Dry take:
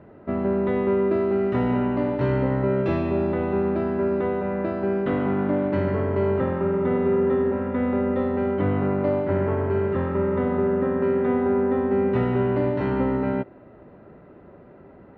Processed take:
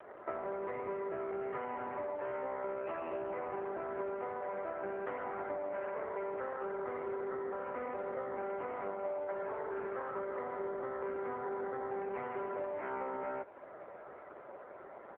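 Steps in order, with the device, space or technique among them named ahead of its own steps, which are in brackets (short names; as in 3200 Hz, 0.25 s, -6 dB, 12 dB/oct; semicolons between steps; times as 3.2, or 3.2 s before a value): 5.86–7.32 HPF 210 Hz 12 dB/oct; three-band isolator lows -14 dB, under 490 Hz, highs -22 dB, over 2800 Hz; frequency-shifting echo 88 ms, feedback 44%, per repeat +32 Hz, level -23 dB; voicemail (BPF 380–2700 Hz; compressor 8:1, threshold -42 dBFS, peak gain reduction 17 dB; gain +7 dB; AMR-NB 5.9 kbps 8000 Hz)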